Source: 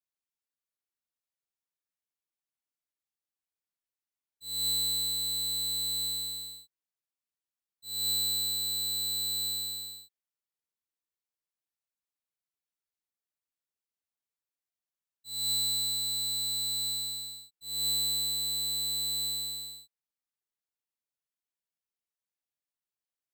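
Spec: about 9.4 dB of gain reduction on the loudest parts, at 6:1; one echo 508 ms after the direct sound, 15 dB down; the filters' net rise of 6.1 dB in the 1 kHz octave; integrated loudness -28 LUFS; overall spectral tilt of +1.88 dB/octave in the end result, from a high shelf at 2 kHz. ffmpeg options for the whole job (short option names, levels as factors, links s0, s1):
-af "equalizer=f=1000:t=o:g=6,highshelf=f=2000:g=7,acompressor=threshold=0.0282:ratio=6,aecho=1:1:508:0.178,volume=1.26"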